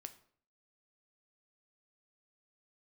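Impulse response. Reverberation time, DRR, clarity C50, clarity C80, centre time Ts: 0.55 s, 8.5 dB, 15.0 dB, 18.0 dB, 6 ms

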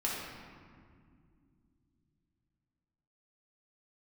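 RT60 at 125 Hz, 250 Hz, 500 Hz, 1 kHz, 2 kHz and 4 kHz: 4.4 s, 3.9 s, 2.5 s, 1.9 s, 1.7 s, 1.2 s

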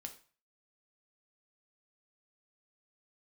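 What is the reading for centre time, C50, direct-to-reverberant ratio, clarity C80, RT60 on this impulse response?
9 ms, 12.0 dB, 4.5 dB, 16.5 dB, 0.40 s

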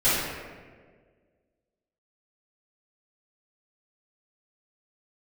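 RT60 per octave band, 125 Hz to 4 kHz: 1.9 s, 1.9 s, 1.9 s, 1.4 s, 1.3 s, 0.90 s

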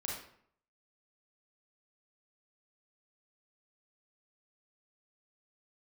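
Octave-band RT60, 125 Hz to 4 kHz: 0.70 s, 0.65 s, 0.65 s, 0.65 s, 0.55 s, 0.45 s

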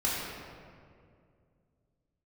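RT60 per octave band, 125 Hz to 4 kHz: 3.2 s, 2.8 s, 2.5 s, 2.0 s, 1.7 s, 1.2 s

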